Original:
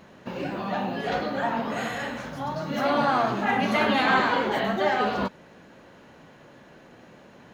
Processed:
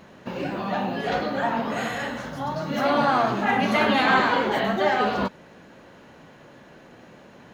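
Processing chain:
0:02.08–0:02.52: notch filter 2,400 Hz, Q 11
level +2 dB

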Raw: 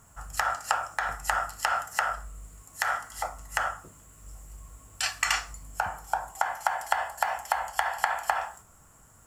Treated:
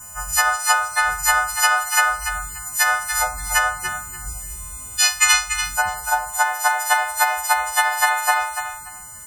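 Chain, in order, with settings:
every partial snapped to a pitch grid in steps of 3 semitones
0:02.86–0:04.38: low-shelf EQ 270 Hz +5.5 dB
in parallel at +3 dB: downward compressor, threshold −34 dBFS, peak gain reduction 17 dB
on the sum: feedback echo with a high-pass in the loop 290 ms, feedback 22%, high-pass 510 Hz, level −8 dB
spectral peaks only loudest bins 64
level +3 dB

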